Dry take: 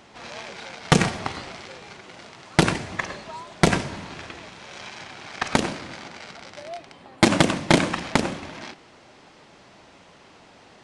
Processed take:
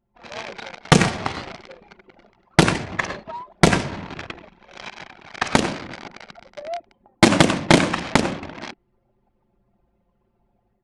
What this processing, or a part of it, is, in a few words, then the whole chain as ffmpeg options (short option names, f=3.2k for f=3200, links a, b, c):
voice memo with heavy noise removal: -af "anlmdn=2.51,dynaudnorm=f=210:g=3:m=7dB"